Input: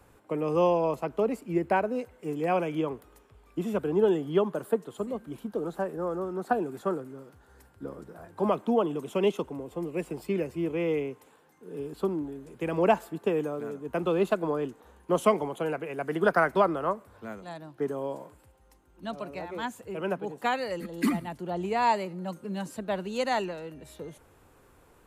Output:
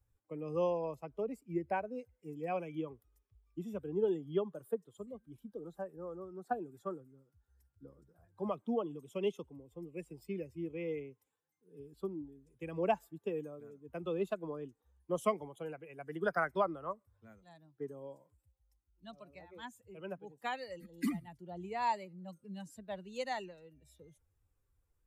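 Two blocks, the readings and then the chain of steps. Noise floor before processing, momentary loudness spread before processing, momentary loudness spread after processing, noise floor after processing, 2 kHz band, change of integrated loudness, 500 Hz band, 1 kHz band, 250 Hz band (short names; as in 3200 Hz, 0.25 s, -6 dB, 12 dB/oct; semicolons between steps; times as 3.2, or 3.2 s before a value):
-60 dBFS, 16 LU, 16 LU, -82 dBFS, -10.0 dB, -10.0 dB, -10.5 dB, -10.0 dB, -11.0 dB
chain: per-bin expansion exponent 1.5; gain -7 dB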